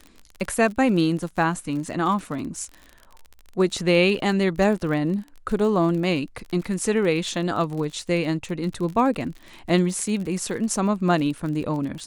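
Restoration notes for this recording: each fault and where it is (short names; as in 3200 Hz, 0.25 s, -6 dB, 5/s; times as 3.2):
crackle 43/s -31 dBFS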